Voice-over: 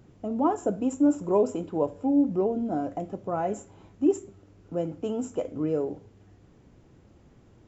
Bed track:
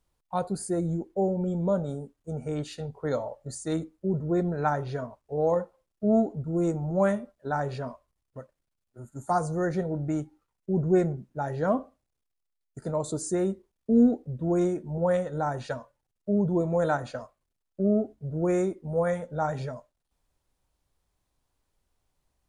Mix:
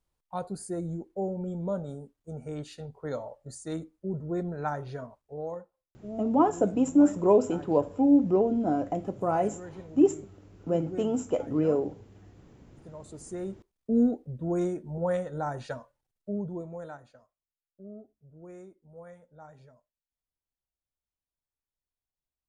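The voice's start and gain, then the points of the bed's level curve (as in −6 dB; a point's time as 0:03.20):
5.95 s, +2.0 dB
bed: 0:05.20 −5.5 dB
0:05.71 −16.5 dB
0:12.99 −16.5 dB
0:13.74 −3.5 dB
0:16.10 −3.5 dB
0:17.18 −21.5 dB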